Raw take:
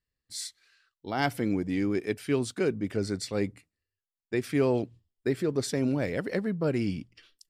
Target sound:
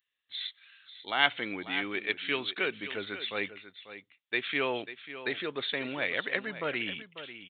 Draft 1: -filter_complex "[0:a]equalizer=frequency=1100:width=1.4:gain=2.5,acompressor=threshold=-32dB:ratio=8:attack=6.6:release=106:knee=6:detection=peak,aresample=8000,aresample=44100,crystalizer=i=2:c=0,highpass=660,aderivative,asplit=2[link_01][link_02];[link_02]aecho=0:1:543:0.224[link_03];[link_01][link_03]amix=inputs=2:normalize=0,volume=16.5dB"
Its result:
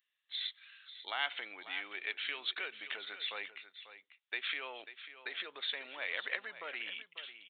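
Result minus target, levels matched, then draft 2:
downward compressor: peak gain reduction +13 dB; 500 Hz band −8.0 dB
-filter_complex "[0:a]equalizer=frequency=1100:width=1.4:gain=2.5,aresample=8000,aresample=44100,crystalizer=i=2:c=0,aderivative,asplit=2[link_01][link_02];[link_02]aecho=0:1:543:0.224[link_03];[link_01][link_03]amix=inputs=2:normalize=0,volume=16.5dB"

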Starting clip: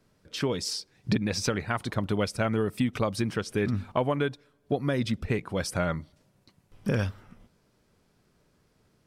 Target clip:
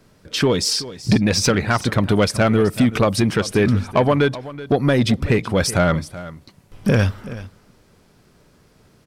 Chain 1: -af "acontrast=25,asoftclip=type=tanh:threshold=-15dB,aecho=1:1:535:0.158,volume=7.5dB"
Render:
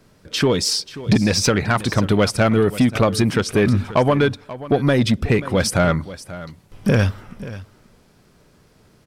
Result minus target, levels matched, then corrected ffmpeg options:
echo 157 ms late
-af "acontrast=25,asoftclip=type=tanh:threshold=-15dB,aecho=1:1:378:0.158,volume=7.5dB"

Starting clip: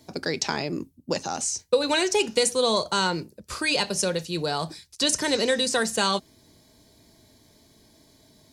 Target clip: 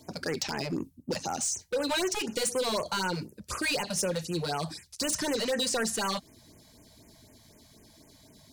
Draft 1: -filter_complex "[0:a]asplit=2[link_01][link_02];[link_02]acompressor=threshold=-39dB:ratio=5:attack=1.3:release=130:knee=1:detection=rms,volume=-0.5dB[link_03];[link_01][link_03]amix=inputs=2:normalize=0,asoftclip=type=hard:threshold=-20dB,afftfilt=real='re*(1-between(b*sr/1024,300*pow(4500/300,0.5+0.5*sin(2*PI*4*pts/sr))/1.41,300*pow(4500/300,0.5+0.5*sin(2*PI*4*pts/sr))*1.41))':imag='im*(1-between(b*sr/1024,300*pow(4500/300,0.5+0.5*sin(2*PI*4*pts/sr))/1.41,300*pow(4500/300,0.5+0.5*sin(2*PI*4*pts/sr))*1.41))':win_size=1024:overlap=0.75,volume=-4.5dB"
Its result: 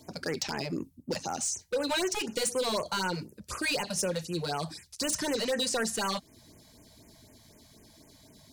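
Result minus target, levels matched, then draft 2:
downward compressor: peak gain reduction +8 dB
-filter_complex "[0:a]asplit=2[link_01][link_02];[link_02]acompressor=threshold=-29dB:ratio=5:attack=1.3:release=130:knee=1:detection=rms,volume=-0.5dB[link_03];[link_01][link_03]amix=inputs=2:normalize=0,asoftclip=type=hard:threshold=-20dB,afftfilt=real='re*(1-between(b*sr/1024,300*pow(4500/300,0.5+0.5*sin(2*PI*4*pts/sr))/1.41,300*pow(4500/300,0.5+0.5*sin(2*PI*4*pts/sr))*1.41))':imag='im*(1-between(b*sr/1024,300*pow(4500/300,0.5+0.5*sin(2*PI*4*pts/sr))/1.41,300*pow(4500/300,0.5+0.5*sin(2*PI*4*pts/sr))*1.41))':win_size=1024:overlap=0.75,volume=-4.5dB"

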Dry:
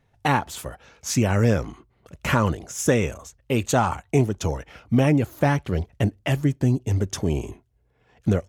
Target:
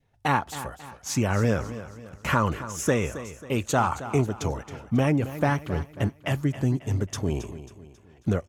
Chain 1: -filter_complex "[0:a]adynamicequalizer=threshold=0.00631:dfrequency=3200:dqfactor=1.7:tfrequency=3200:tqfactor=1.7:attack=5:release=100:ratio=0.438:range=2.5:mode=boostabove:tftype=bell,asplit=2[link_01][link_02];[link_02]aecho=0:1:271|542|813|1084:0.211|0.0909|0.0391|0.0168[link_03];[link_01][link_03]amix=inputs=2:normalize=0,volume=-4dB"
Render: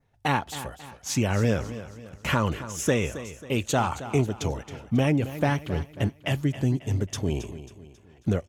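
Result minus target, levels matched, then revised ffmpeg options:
4,000 Hz band +3.5 dB
-filter_complex "[0:a]adynamicequalizer=threshold=0.00631:dfrequency=1200:dqfactor=1.7:tfrequency=1200:tqfactor=1.7:attack=5:release=100:ratio=0.438:range=2.5:mode=boostabove:tftype=bell,asplit=2[link_01][link_02];[link_02]aecho=0:1:271|542|813|1084:0.211|0.0909|0.0391|0.0168[link_03];[link_01][link_03]amix=inputs=2:normalize=0,volume=-4dB"

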